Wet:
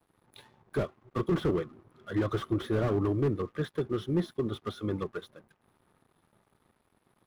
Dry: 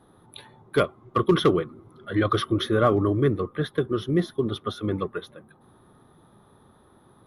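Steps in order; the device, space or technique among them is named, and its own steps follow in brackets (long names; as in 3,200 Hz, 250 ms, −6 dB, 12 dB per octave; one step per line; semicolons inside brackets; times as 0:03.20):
early transistor amplifier (dead-zone distortion −55.5 dBFS; slew-rate limiting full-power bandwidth 44 Hz)
level −5 dB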